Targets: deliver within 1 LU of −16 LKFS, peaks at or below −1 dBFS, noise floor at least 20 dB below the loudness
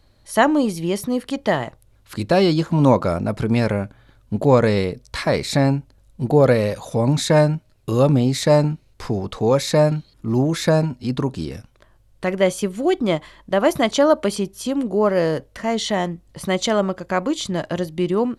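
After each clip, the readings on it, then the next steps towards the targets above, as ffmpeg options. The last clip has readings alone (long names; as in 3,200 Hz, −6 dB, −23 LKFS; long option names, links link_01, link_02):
integrated loudness −20.0 LKFS; sample peak −2.0 dBFS; target loudness −16.0 LKFS
→ -af "volume=4dB,alimiter=limit=-1dB:level=0:latency=1"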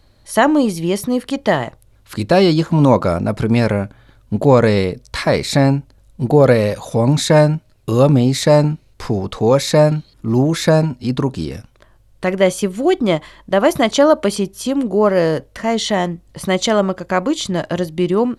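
integrated loudness −16.0 LKFS; sample peak −1.0 dBFS; background noise floor −51 dBFS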